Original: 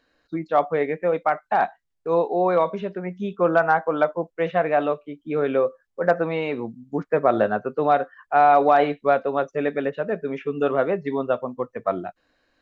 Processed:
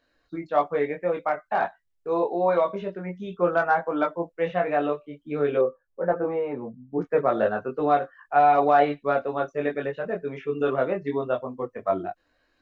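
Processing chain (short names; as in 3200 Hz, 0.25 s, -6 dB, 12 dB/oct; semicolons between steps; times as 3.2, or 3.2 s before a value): chorus voices 6, 0.33 Hz, delay 22 ms, depth 1.8 ms; 5.61–7.01 LPF 1200 Hz 12 dB/oct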